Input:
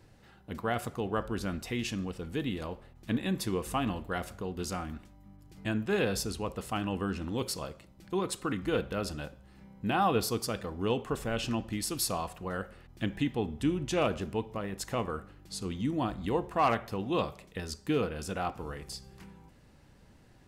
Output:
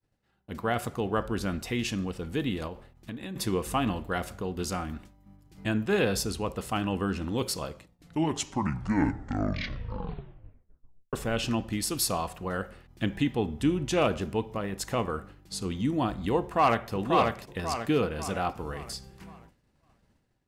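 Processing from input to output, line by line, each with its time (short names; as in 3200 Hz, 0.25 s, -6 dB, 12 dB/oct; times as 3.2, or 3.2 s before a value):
2.67–3.36 compressor 12:1, threshold -37 dBFS
7.67 tape stop 3.46 s
16.4–16.91 echo throw 0.54 s, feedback 45%, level -3 dB
whole clip: expander -48 dBFS; AGC gain up to 8.5 dB; gain -5 dB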